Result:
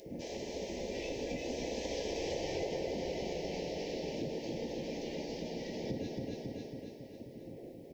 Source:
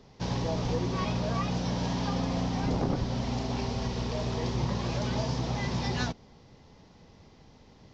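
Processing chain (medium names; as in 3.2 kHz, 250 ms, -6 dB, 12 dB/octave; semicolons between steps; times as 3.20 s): Doppler pass-by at 2.45 s, 13 m/s, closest 4.9 m; wind noise 230 Hz -51 dBFS; reverberation RT60 0.45 s, pre-delay 3 ms, DRR 0 dB; upward compressor, threshold -48 dBFS; spectral gate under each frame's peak -10 dB weak; graphic EQ 125/250/500/1000/2000/4000 Hz +7/+7/+10/-4/+8/-5 dB; feedback delay 273 ms, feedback 54%, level -5 dB; compression 4:1, threshold -39 dBFS, peak gain reduction 14 dB; Butterworth band-stop 1.3 kHz, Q 0.88; treble shelf 3.9 kHz +8.5 dB; added noise blue -79 dBFS; trim +3.5 dB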